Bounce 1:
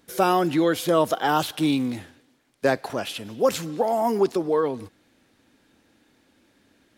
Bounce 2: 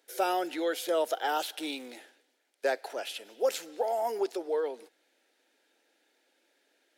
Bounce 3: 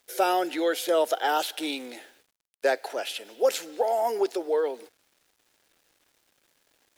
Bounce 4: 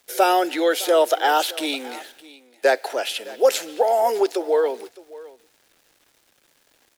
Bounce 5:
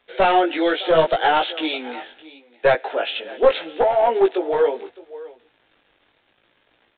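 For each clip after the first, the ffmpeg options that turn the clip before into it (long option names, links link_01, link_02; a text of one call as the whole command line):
ffmpeg -i in.wav -af "highpass=frequency=400:width=0.5412,highpass=frequency=400:width=1.3066,equalizer=frequency=1100:width=5.9:gain=-13.5,volume=-6dB" out.wav
ffmpeg -i in.wav -af "acrusher=bits=10:mix=0:aa=0.000001,volume=5dB" out.wav
ffmpeg -i in.wav -filter_complex "[0:a]acrossover=split=250|1300|4600[link_01][link_02][link_03][link_04];[link_01]acompressor=threshold=-55dB:ratio=6[link_05];[link_05][link_02][link_03][link_04]amix=inputs=4:normalize=0,aecho=1:1:611:0.1,volume=6.5dB" out.wav
ffmpeg -i in.wav -af "aresample=8000,aeval=exprs='clip(val(0),-1,0.188)':channel_layout=same,aresample=44100,flanger=delay=16.5:depth=4.4:speed=0.75,volume=5dB" out.wav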